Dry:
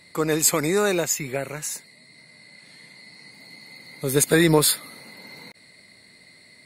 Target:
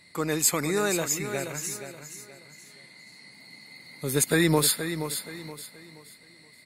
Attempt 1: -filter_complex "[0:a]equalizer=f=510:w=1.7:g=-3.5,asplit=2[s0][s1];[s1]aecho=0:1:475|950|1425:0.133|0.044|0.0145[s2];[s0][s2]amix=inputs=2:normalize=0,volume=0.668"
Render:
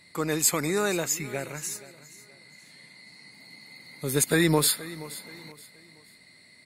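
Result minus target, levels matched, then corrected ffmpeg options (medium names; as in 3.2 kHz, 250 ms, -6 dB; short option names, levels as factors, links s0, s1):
echo-to-direct -8 dB
-filter_complex "[0:a]equalizer=f=510:w=1.7:g=-3.5,asplit=2[s0][s1];[s1]aecho=0:1:475|950|1425|1900:0.335|0.111|0.0365|0.012[s2];[s0][s2]amix=inputs=2:normalize=0,volume=0.668"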